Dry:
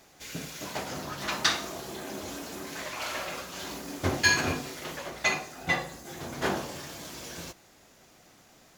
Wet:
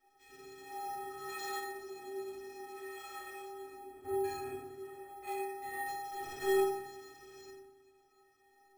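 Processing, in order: stepped spectrum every 0.1 s; 3.48–5.27 LPF 1200 Hz 6 dB/oct; 5.86–6.62 companded quantiser 2-bit; metallic resonator 380 Hz, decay 0.62 s, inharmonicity 0.03; reverb RT60 1.0 s, pre-delay 4 ms, DRR -2.5 dB; careless resampling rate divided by 4×, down filtered, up hold; gain +4.5 dB

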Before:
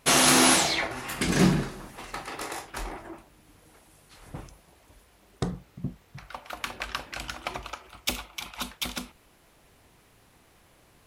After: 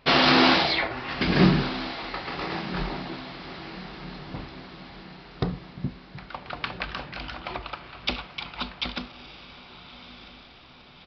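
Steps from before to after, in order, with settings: 6.86–7.55 transient shaper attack -6 dB, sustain +2 dB; diffused feedback echo 1.259 s, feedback 53%, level -13 dB; downsampling 11025 Hz; gain +2.5 dB

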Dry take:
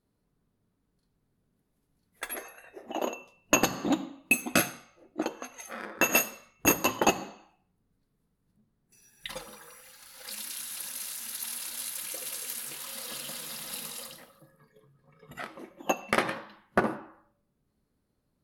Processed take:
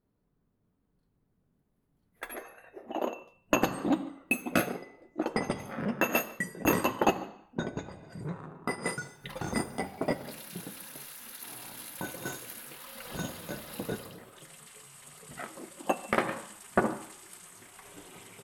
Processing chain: bell 6900 Hz -12 dB 2.2 oct; outdoor echo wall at 25 m, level -22 dB; echoes that change speed 0.648 s, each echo -5 st, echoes 2, each echo -6 dB

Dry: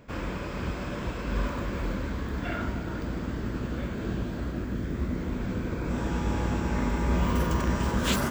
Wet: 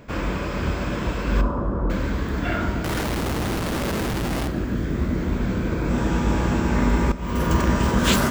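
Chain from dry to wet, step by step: 1.41–1.9 steep low-pass 1300 Hz 36 dB/oct; 2.84–4.48 Schmitt trigger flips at -49 dBFS; 7.12–7.54 fade in; two-slope reverb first 0.64 s, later 3.4 s, from -18 dB, DRR 11 dB; gain +7 dB

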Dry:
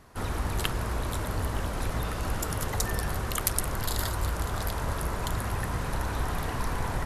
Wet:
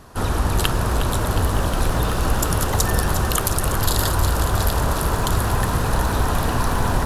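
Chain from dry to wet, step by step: bell 2100 Hz -7.5 dB 0.35 oct; maximiser +11 dB; lo-fi delay 0.361 s, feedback 80%, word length 7-bit, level -10.5 dB; gain -1 dB

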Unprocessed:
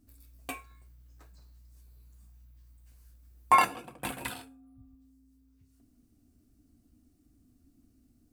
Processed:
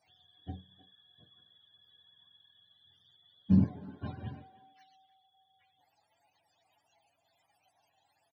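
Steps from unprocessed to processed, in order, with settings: spectrum mirrored in octaves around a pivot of 450 Hz; speakerphone echo 0.31 s, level -16 dB; gain -3 dB

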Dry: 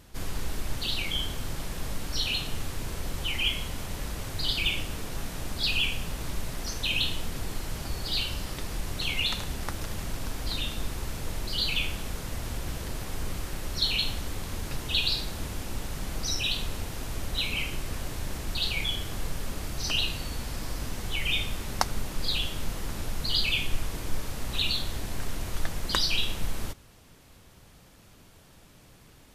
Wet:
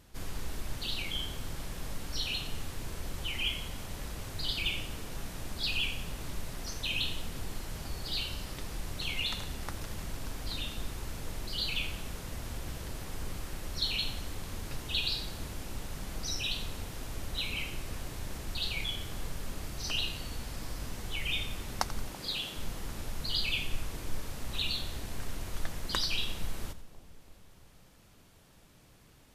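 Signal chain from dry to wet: 22.13–22.57 HPF 150 Hz; on a send: split-band echo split 850 Hz, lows 0.333 s, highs 88 ms, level -15.5 dB; on the sum: gain -5.5 dB

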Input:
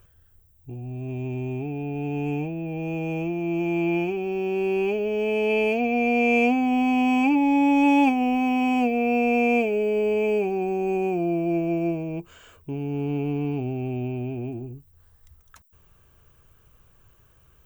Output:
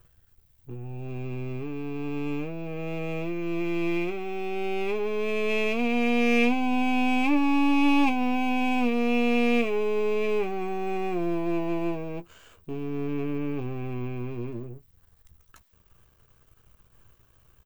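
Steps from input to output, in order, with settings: half-wave gain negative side -12 dB; doubler 17 ms -11 dB

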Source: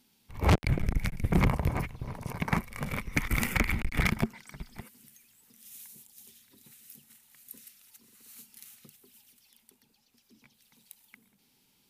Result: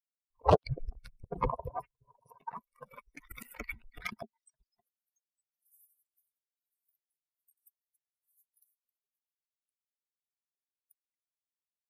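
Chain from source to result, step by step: per-bin expansion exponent 3; auto swell 0.138 s; band shelf 680 Hz +14 dB

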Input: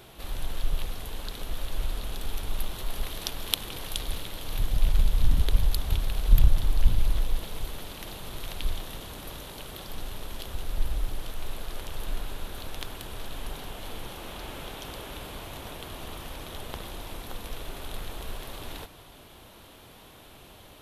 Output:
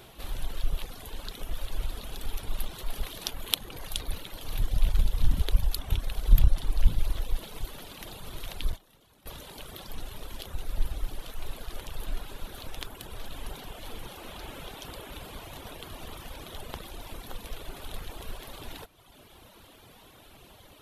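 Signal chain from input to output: reverb removal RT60 1.1 s; 8.72–9.26 gate -32 dBFS, range -17 dB

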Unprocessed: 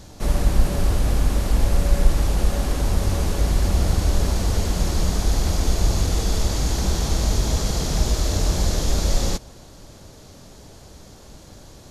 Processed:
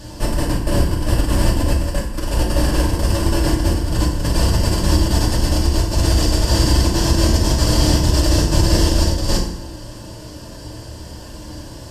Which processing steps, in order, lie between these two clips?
ripple EQ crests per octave 1.3, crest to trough 9 dB; negative-ratio compressor -20 dBFS, ratio -0.5; FDN reverb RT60 0.75 s, low-frequency decay 1.4×, high-frequency decay 0.8×, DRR -2.5 dB; gain +1 dB

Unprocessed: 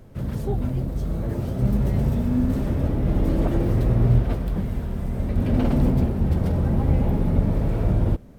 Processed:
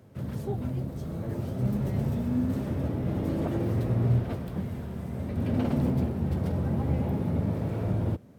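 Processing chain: HPF 80 Hz 24 dB/oct; gain -5 dB

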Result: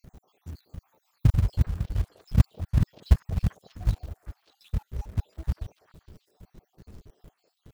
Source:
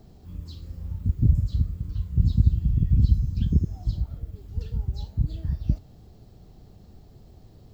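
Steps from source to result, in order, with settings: random spectral dropouts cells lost 72%; dynamic EQ 780 Hz, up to +4 dB, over -51 dBFS, Q 0.8; in parallel at -4 dB: companded quantiser 4-bit; on the sum: delay with a stepping band-pass 0.196 s, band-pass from 540 Hz, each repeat 1.4 oct, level -7 dB; gain -2.5 dB

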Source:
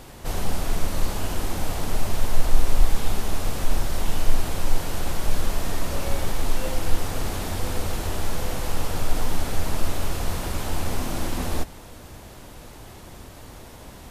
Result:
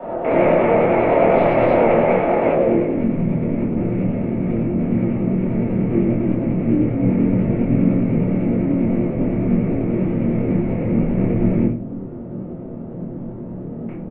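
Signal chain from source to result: rattling part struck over -34 dBFS, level -14 dBFS; dynamic EQ 1300 Hz, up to -5 dB, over -43 dBFS, Q 0.77; in parallel at +2.5 dB: limiter -13.5 dBFS, peak gain reduction 10.5 dB; on the sum: low-pass sweep 920 Hz -> 410 Hz, 2.42–3.09; 1.29–1.78 short-mantissa float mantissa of 4-bit; mistuned SSB -220 Hz 480–3400 Hz; doubler 26 ms -2 dB; reverb RT60 0.45 s, pre-delay 3 ms, DRR -8 dB; vibrato 10 Hz 41 cents; gain -1 dB

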